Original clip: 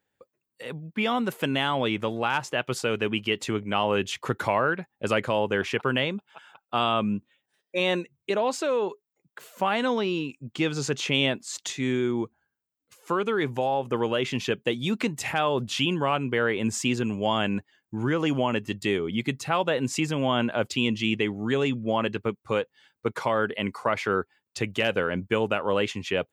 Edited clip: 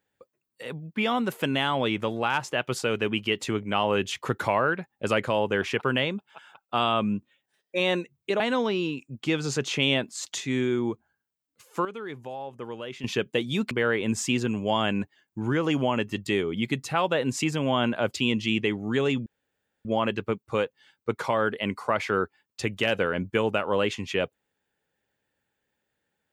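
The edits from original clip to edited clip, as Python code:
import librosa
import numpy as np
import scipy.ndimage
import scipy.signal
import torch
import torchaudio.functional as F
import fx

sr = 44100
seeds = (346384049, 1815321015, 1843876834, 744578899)

y = fx.edit(x, sr, fx.cut(start_s=8.4, length_s=1.32),
    fx.clip_gain(start_s=13.17, length_s=1.19, db=-11.0),
    fx.cut(start_s=15.03, length_s=1.24),
    fx.insert_room_tone(at_s=21.82, length_s=0.59), tone=tone)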